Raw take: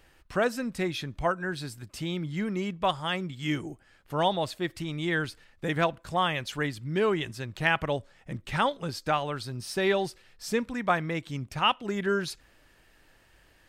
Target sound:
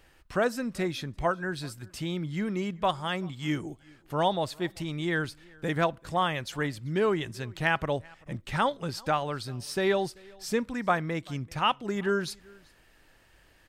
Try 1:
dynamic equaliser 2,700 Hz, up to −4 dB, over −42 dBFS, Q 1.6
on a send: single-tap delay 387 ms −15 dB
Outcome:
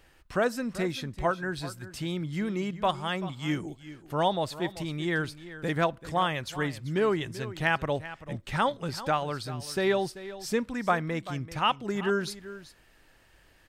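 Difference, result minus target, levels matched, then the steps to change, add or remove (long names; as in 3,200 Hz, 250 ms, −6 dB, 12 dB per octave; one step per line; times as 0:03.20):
echo-to-direct +11 dB
change: single-tap delay 387 ms −26 dB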